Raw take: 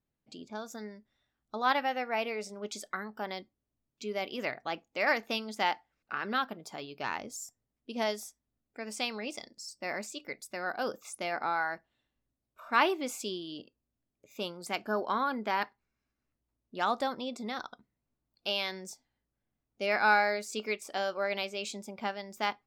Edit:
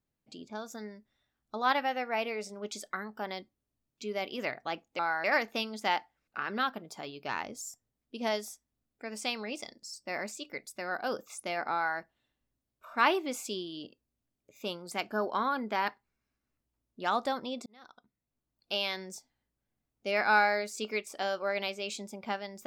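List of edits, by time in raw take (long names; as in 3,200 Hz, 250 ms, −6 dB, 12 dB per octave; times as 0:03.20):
0:11.49–0:11.74: duplicate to 0:04.99
0:17.41–0:18.47: fade in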